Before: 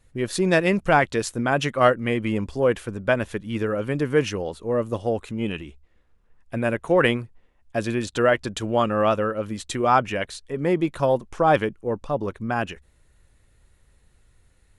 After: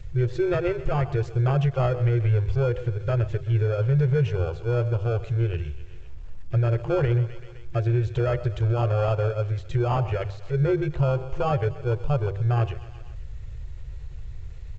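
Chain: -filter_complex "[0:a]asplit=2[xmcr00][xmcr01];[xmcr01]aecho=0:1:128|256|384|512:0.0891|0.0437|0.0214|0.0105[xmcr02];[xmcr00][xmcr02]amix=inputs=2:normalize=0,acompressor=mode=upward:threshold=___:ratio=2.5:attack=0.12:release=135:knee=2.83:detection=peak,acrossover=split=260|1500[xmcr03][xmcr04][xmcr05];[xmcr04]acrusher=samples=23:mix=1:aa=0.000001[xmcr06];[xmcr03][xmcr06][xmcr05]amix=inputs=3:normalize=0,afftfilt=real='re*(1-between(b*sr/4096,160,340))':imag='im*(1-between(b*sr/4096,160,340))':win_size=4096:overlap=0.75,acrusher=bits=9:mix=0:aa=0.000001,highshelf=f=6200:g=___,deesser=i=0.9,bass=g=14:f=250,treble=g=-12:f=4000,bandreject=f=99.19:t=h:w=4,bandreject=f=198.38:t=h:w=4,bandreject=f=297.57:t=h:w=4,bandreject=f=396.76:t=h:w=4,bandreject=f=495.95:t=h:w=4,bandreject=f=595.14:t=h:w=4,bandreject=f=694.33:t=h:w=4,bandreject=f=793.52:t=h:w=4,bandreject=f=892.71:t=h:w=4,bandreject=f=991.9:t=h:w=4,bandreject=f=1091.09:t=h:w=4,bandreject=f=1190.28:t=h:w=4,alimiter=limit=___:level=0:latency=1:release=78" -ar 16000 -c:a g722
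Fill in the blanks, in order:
-35dB, 6.5, -14dB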